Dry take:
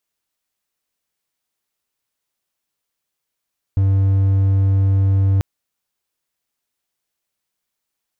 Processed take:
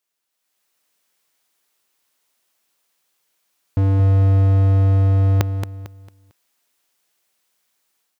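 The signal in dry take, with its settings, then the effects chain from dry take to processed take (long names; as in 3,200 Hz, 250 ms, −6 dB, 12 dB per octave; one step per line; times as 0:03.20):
tone triangle 97.1 Hz −10 dBFS 1.64 s
high-pass filter 300 Hz 6 dB per octave
automatic gain control gain up to 9.5 dB
on a send: repeating echo 225 ms, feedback 32%, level −7.5 dB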